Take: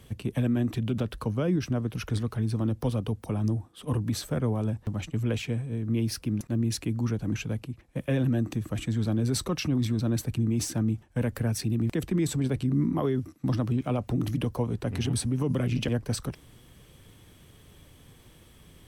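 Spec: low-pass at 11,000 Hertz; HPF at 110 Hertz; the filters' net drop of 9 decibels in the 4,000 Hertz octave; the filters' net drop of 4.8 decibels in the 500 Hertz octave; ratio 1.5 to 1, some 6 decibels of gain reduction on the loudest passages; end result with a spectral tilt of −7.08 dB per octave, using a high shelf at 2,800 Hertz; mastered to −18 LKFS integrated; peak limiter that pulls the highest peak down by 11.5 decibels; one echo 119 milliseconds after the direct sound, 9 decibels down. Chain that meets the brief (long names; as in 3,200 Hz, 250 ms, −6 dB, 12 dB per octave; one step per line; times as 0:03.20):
high-pass filter 110 Hz
low-pass filter 11,000 Hz
parametric band 500 Hz −6 dB
high-shelf EQ 2,800 Hz −8.5 dB
parametric band 4,000 Hz −4.5 dB
downward compressor 1.5 to 1, threshold −41 dBFS
brickwall limiter −35.5 dBFS
single-tap delay 119 ms −9 dB
level +25.5 dB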